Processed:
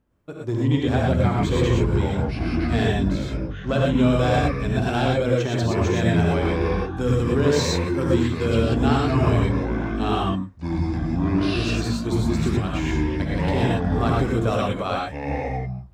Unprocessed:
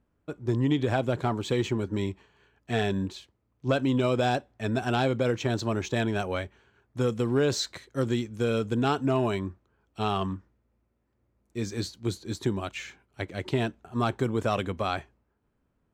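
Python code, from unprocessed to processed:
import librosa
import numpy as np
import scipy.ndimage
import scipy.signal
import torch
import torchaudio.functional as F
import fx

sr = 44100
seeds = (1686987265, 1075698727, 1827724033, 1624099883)

y = fx.rev_gated(x, sr, seeds[0], gate_ms=140, shape='rising', drr_db=-2.0)
y = fx.echo_pitch(y, sr, ms=149, semitones=-7, count=2, db_per_echo=-3.0)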